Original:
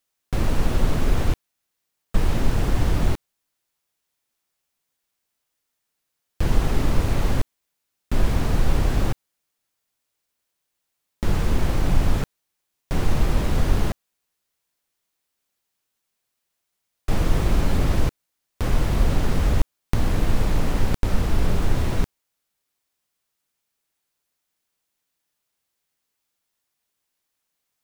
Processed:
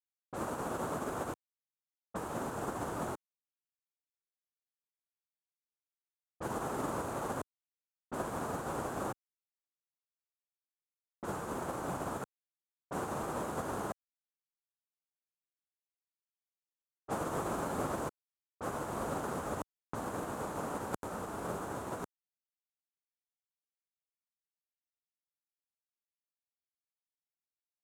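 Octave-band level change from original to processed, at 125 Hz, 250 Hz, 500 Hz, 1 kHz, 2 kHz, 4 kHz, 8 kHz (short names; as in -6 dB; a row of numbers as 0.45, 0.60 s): -22.0, -12.5, -7.0, -4.5, -11.0, -18.0, -8.0 dB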